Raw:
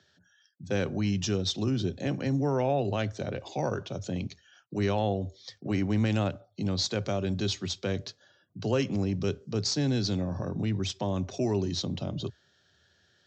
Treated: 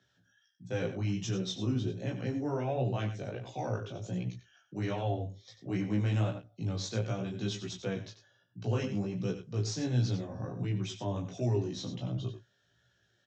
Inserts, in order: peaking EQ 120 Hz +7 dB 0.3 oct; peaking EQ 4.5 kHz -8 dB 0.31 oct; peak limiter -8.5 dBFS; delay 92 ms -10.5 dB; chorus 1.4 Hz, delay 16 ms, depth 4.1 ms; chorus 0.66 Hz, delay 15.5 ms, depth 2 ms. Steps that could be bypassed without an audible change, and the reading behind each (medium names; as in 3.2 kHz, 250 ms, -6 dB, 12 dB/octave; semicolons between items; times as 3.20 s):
peak limiter -8.5 dBFS: peak at its input -13.0 dBFS